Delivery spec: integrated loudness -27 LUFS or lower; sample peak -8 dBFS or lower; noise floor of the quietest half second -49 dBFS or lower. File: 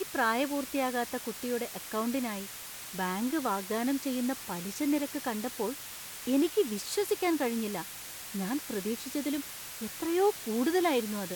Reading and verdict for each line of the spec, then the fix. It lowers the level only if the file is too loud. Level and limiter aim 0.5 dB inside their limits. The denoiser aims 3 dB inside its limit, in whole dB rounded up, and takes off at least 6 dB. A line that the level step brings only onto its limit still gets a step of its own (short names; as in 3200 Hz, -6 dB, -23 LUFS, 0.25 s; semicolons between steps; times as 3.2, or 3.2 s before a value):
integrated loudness -32.0 LUFS: OK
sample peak -16.5 dBFS: OK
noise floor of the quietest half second -43 dBFS: fail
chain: denoiser 9 dB, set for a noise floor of -43 dBFS